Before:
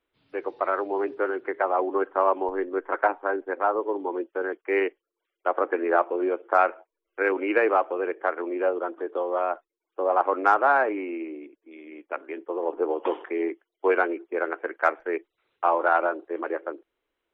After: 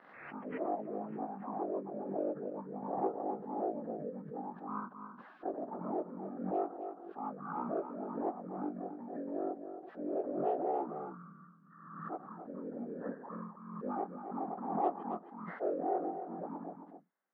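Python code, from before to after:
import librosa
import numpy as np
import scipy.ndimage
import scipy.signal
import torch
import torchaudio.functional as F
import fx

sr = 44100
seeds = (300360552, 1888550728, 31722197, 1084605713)

p1 = fx.pitch_bins(x, sr, semitones=-11.0)
p2 = fx.peak_eq(p1, sr, hz=1000.0, db=-9.5, octaves=2.1)
p3 = fx.rider(p2, sr, range_db=3, speed_s=0.5)
p4 = fx.bandpass_edges(p3, sr, low_hz=730.0, high_hz=2900.0)
p5 = fx.air_absorb(p4, sr, metres=390.0)
p6 = p5 + fx.echo_single(p5, sr, ms=270, db=-8.5, dry=0)
p7 = fx.pre_swell(p6, sr, db_per_s=52.0)
y = F.gain(torch.from_numpy(p7), 3.0).numpy()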